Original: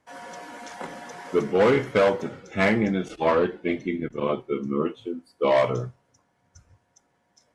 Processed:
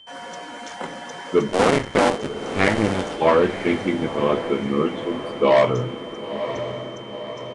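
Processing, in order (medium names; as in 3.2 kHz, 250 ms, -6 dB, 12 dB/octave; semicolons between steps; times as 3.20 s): 1.48–3.15 s: cycle switcher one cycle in 2, muted; whistle 3.1 kHz -49 dBFS; echo that smears into a reverb 979 ms, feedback 57%, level -10 dB; resampled via 22.05 kHz; trim +4.5 dB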